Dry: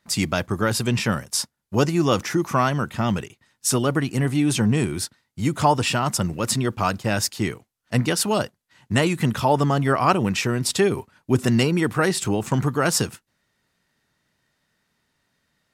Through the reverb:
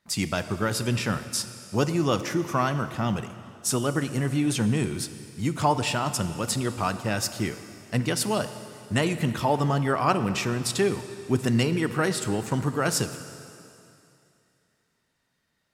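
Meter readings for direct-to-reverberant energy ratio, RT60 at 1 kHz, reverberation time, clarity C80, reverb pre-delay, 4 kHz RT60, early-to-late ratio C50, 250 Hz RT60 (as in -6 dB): 10.5 dB, 2.7 s, 2.7 s, 12.0 dB, 19 ms, 2.7 s, 11.5 dB, 2.6 s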